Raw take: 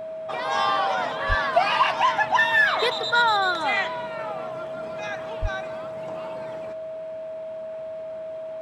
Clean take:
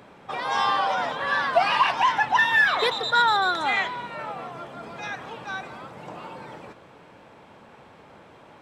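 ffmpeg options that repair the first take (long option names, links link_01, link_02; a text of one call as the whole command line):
ffmpeg -i in.wav -filter_complex "[0:a]bandreject=frequency=640:width=30,asplit=3[link_01][link_02][link_03];[link_01]afade=type=out:start_time=1.28:duration=0.02[link_04];[link_02]highpass=frequency=140:width=0.5412,highpass=frequency=140:width=1.3066,afade=type=in:start_time=1.28:duration=0.02,afade=type=out:start_time=1.4:duration=0.02[link_05];[link_03]afade=type=in:start_time=1.4:duration=0.02[link_06];[link_04][link_05][link_06]amix=inputs=3:normalize=0,asplit=3[link_07][link_08][link_09];[link_07]afade=type=out:start_time=5.41:duration=0.02[link_10];[link_08]highpass=frequency=140:width=0.5412,highpass=frequency=140:width=1.3066,afade=type=in:start_time=5.41:duration=0.02,afade=type=out:start_time=5.53:duration=0.02[link_11];[link_09]afade=type=in:start_time=5.53:duration=0.02[link_12];[link_10][link_11][link_12]amix=inputs=3:normalize=0" out.wav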